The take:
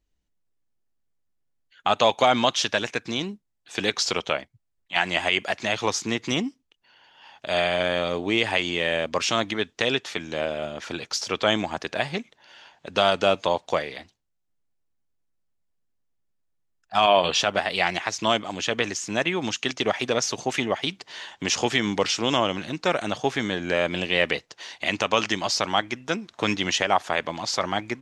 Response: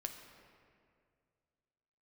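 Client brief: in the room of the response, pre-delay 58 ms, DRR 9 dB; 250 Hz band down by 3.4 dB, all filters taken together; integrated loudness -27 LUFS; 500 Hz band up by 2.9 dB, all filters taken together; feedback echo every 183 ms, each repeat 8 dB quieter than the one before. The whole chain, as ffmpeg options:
-filter_complex "[0:a]equalizer=f=250:t=o:g=-6.5,equalizer=f=500:t=o:g=5,aecho=1:1:183|366|549|732|915:0.398|0.159|0.0637|0.0255|0.0102,asplit=2[s0][s1];[1:a]atrim=start_sample=2205,adelay=58[s2];[s1][s2]afir=irnorm=-1:irlink=0,volume=0.447[s3];[s0][s3]amix=inputs=2:normalize=0,volume=0.596"

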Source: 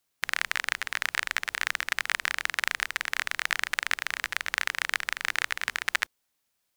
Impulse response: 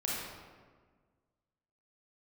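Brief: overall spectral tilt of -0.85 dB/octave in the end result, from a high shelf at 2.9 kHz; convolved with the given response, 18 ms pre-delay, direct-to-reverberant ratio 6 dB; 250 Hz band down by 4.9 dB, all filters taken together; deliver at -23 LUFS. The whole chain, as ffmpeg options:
-filter_complex "[0:a]equalizer=f=250:t=o:g=-7,highshelf=f=2900:g=-6,asplit=2[s0][s1];[1:a]atrim=start_sample=2205,adelay=18[s2];[s1][s2]afir=irnorm=-1:irlink=0,volume=0.266[s3];[s0][s3]amix=inputs=2:normalize=0,volume=2.37"

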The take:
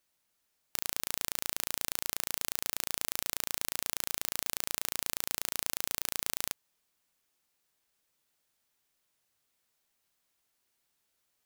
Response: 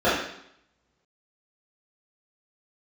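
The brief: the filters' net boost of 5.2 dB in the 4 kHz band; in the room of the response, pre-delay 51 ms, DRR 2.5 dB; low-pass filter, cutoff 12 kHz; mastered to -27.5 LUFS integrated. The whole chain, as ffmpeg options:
-filter_complex "[0:a]lowpass=12000,equalizer=f=4000:t=o:g=6.5,asplit=2[s0][s1];[1:a]atrim=start_sample=2205,adelay=51[s2];[s1][s2]afir=irnorm=-1:irlink=0,volume=0.0708[s3];[s0][s3]amix=inputs=2:normalize=0,volume=2"

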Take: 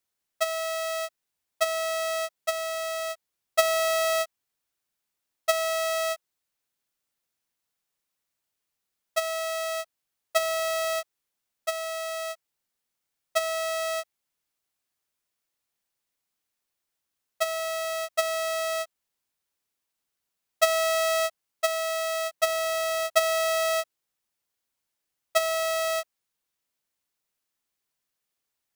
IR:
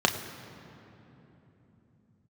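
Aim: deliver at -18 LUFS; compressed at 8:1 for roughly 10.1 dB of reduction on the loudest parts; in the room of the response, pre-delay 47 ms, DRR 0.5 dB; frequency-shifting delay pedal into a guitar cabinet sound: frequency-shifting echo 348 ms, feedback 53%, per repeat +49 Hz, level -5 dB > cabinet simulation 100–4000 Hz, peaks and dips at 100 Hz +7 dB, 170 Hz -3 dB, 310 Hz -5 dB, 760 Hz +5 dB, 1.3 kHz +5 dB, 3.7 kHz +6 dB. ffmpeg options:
-filter_complex "[0:a]acompressor=threshold=0.0398:ratio=8,asplit=2[s0][s1];[1:a]atrim=start_sample=2205,adelay=47[s2];[s1][s2]afir=irnorm=-1:irlink=0,volume=0.188[s3];[s0][s3]amix=inputs=2:normalize=0,asplit=8[s4][s5][s6][s7][s8][s9][s10][s11];[s5]adelay=348,afreqshift=49,volume=0.562[s12];[s6]adelay=696,afreqshift=98,volume=0.299[s13];[s7]adelay=1044,afreqshift=147,volume=0.158[s14];[s8]adelay=1392,afreqshift=196,volume=0.0841[s15];[s9]adelay=1740,afreqshift=245,volume=0.0442[s16];[s10]adelay=2088,afreqshift=294,volume=0.0234[s17];[s11]adelay=2436,afreqshift=343,volume=0.0124[s18];[s4][s12][s13][s14][s15][s16][s17][s18]amix=inputs=8:normalize=0,highpass=100,equalizer=f=100:t=q:w=4:g=7,equalizer=f=170:t=q:w=4:g=-3,equalizer=f=310:t=q:w=4:g=-5,equalizer=f=760:t=q:w=4:g=5,equalizer=f=1300:t=q:w=4:g=5,equalizer=f=3700:t=q:w=4:g=6,lowpass=f=4000:w=0.5412,lowpass=f=4000:w=1.3066,volume=3.55"

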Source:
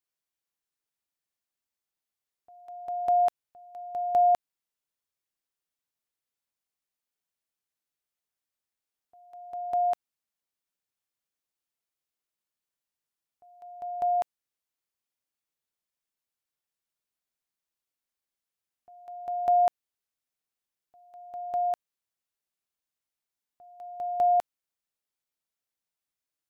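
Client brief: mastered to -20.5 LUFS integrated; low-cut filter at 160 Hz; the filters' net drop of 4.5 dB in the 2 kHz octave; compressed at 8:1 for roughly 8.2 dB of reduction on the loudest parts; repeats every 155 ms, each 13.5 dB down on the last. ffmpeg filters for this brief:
-af "highpass=160,equalizer=f=2000:t=o:g=-6,acompressor=threshold=0.0355:ratio=8,aecho=1:1:155|310:0.211|0.0444,volume=4.73"

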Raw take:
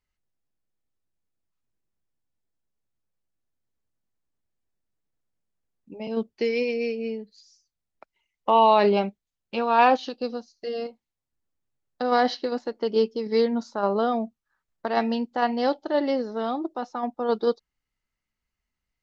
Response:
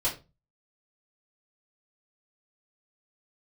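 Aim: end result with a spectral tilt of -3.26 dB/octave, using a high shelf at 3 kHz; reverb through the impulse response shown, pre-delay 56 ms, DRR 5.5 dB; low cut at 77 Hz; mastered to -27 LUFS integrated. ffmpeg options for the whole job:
-filter_complex "[0:a]highpass=77,highshelf=f=3000:g=-4,asplit=2[s0][s1];[1:a]atrim=start_sample=2205,adelay=56[s2];[s1][s2]afir=irnorm=-1:irlink=0,volume=0.224[s3];[s0][s3]amix=inputs=2:normalize=0,volume=0.708"

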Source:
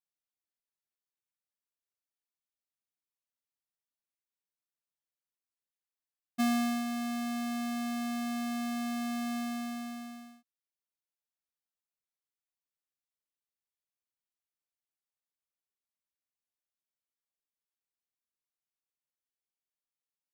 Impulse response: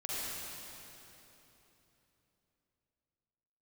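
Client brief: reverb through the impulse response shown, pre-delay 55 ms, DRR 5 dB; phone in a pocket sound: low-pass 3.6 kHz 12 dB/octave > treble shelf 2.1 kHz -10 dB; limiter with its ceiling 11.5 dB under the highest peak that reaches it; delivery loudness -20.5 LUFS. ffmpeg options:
-filter_complex "[0:a]alimiter=level_in=4.73:limit=0.0631:level=0:latency=1,volume=0.211,asplit=2[s0][s1];[1:a]atrim=start_sample=2205,adelay=55[s2];[s1][s2]afir=irnorm=-1:irlink=0,volume=0.355[s3];[s0][s3]amix=inputs=2:normalize=0,lowpass=3600,highshelf=f=2100:g=-10,volume=6.68"

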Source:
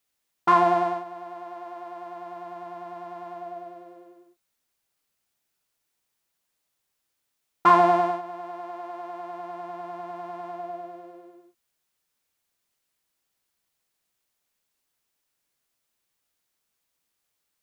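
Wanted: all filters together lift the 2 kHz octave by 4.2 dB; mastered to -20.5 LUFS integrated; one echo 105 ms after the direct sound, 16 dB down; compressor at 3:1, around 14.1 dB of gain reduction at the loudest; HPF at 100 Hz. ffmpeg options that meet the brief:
-af "highpass=100,equalizer=f=2000:t=o:g=5.5,acompressor=threshold=0.0282:ratio=3,aecho=1:1:105:0.158,volume=5.96"

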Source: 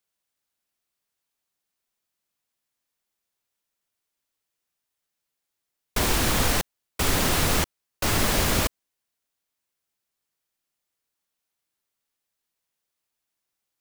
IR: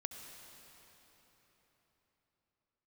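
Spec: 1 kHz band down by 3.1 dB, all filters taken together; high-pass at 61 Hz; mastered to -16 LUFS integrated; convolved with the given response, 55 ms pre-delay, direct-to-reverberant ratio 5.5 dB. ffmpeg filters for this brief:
-filter_complex "[0:a]highpass=61,equalizer=f=1000:t=o:g=-4,asplit=2[s0][s1];[1:a]atrim=start_sample=2205,adelay=55[s2];[s1][s2]afir=irnorm=-1:irlink=0,volume=0.668[s3];[s0][s3]amix=inputs=2:normalize=0,volume=2.37"

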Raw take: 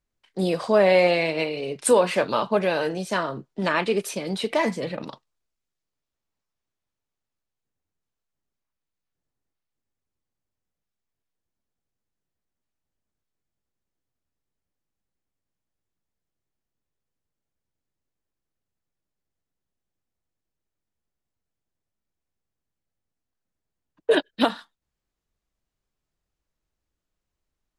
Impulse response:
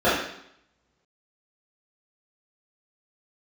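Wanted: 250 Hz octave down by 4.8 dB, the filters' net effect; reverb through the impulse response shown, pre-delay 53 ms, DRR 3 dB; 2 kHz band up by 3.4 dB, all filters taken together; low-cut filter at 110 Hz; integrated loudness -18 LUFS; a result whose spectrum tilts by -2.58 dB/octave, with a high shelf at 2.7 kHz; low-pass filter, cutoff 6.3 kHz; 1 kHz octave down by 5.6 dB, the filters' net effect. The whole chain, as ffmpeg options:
-filter_complex "[0:a]highpass=110,lowpass=6300,equalizer=f=250:t=o:g=-6,equalizer=f=1000:t=o:g=-8.5,equalizer=f=2000:t=o:g=8,highshelf=f=2700:g=-3.5,asplit=2[s0][s1];[1:a]atrim=start_sample=2205,adelay=53[s2];[s1][s2]afir=irnorm=-1:irlink=0,volume=0.0596[s3];[s0][s3]amix=inputs=2:normalize=0,volume=1.68"

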